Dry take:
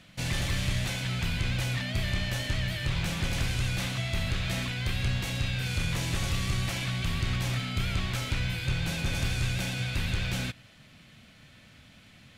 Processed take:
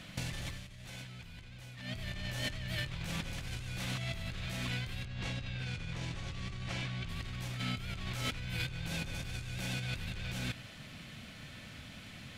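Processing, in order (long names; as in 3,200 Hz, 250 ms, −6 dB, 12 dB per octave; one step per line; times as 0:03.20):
compressor whose output falls as the input rises −37 dBFS, ratio −1
0:00.51–0:01.97: duck −9.5 dB, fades 0.13 s
0:05.05–0:07.09: high-frequency loss of the air 84 metres
level −2 dB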